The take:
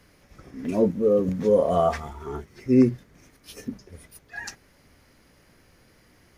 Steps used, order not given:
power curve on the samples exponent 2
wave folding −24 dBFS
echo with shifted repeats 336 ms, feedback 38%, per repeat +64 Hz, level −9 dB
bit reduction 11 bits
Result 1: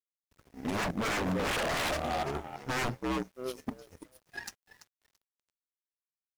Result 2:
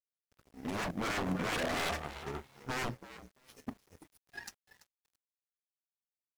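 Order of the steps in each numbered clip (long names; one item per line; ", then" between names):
echo with shifted repeats, then wave folding, then power curve on the samples, then bit reduction
wave folding, then echo with shifted repeats, then power curve on the samples, then bit reduction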